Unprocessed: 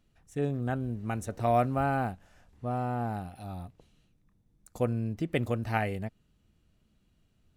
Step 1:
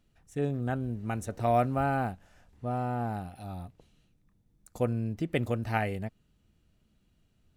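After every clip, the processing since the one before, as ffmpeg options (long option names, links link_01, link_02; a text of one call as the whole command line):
ffmpeg -i in.wav -af "bandreject=frequency=1100:width=25" out.wav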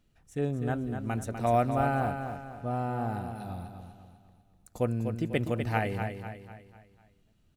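ffmpeg -i in.wav -af "aecho=1:1:248|496|744|992|1240:0.422|0.181|0.078|0.0335|0.0144" out.wav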